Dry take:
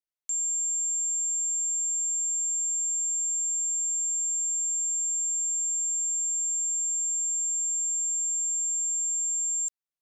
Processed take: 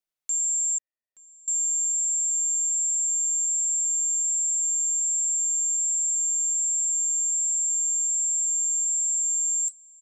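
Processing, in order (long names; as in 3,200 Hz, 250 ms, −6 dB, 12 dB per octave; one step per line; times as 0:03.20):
flanger 1.3 Hz, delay 4 ms, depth 7.6 ms, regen +60%
0:00.78–0:01.48: formant resonators in series e
slap from a distant wall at 150 metres, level −11 dB
level +7.5 dB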